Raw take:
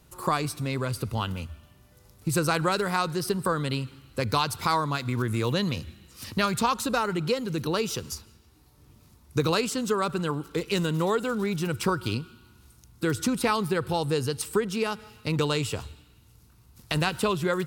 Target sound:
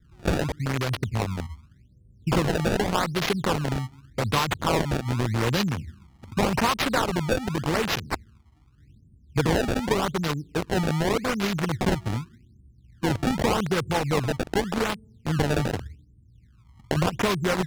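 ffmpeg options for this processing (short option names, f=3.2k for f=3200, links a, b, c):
-filter_complex "[0:a]acrossover=split=340[a][b];[b]acrusher=bits=4:mix=0:aa=0.000001[c];[a][c]amix=inputs=2:normalize=0,aexciter=amount=3.5:drive=8.5:freq=10k,bass=f=250:g=3,treble=f=4k:g=-4,acrusher=samples=24:mix=1:aa=0.000001:lfo=1:lforange=38.4:lforate=0.85,highshelf=f=11k:g=-11"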